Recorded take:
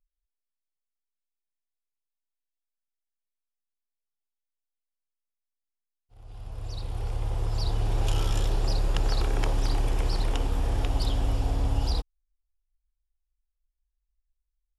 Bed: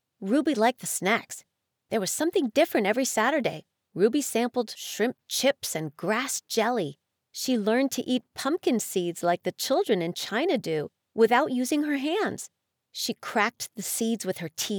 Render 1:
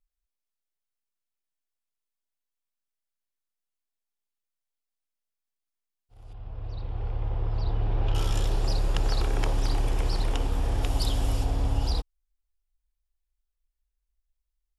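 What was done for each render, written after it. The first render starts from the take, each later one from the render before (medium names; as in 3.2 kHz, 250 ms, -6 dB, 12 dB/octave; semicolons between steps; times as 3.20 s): 6.33–8.15 s: distance through air 320 m; 10.82–11.43 s: treble shelf 6.6 kHz -> 4.3 kHz +9 dB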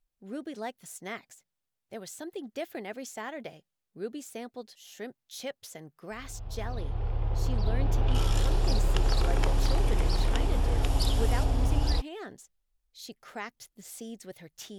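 add bed -14.5 dB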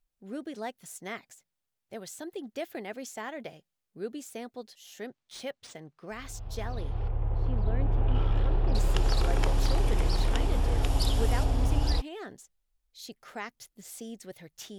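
5.06–6.12 s: decimation joined by straight lines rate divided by 3×; 7.08–8.75 s: distance through air 470 m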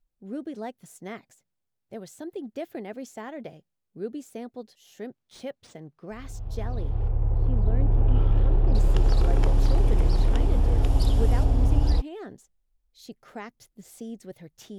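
tilt shelf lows +5.5 dB, about 750 Hz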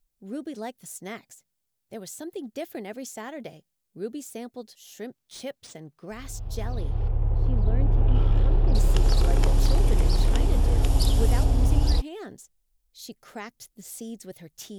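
treble shelf 3.6 kHz +11.5 dB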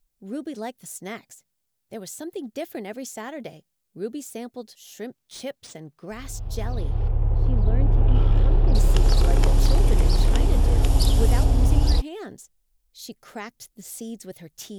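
trim +2.5 dB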